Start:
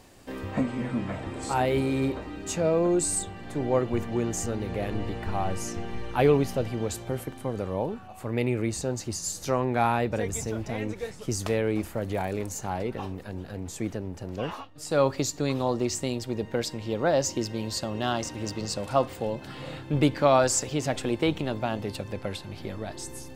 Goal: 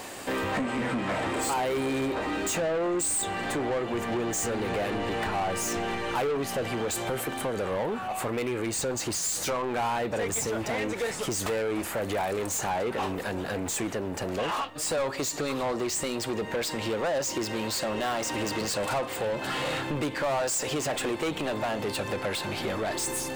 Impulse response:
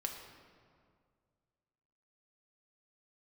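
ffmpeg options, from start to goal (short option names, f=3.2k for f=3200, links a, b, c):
-filter_complex "[0:a]acompressor=threshold=-32dB:ratio=4,asplit=2[a][b];[b]highpass=f=720:p=1,volume=25dB,asoftclip=type=tanh:threshold=-20.5dB[c];[a][c]amix=inputs=2:normalize=0,lowpass=f=3.3k:p=1,volume=-6dB,aexciter=amount=1.9:drive=6.6:freq=7.3k"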